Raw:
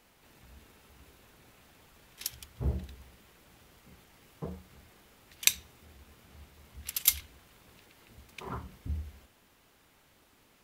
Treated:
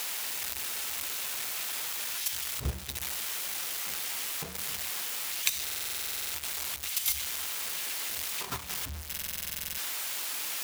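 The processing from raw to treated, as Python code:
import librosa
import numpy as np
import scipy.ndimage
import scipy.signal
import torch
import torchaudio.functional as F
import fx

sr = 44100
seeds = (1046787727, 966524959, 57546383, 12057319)

y = x + 0.5 * 10.0 ** (-14.5 / 20.0) * np.diff(np.sign(x), prepend=np.sign(x[:1]))
y = fx.peak_eq(y, sr, hz=690.0, db=2.0, octaves=1.6)
y = y + 10.0 ** (-13.0 / 20.0) * np.pad(y, (int(260 * sr / 1000.0), 0))[:len(y)]
y = fx.level_steps(y, sr, step_db=9)
y = fx.high_shelf(y, sr, hz=5900.0, db=-10.5)
y = fx.buffer_glitch(y, sr, at_s=(5.64, 9.08), block=2048, repeats=14)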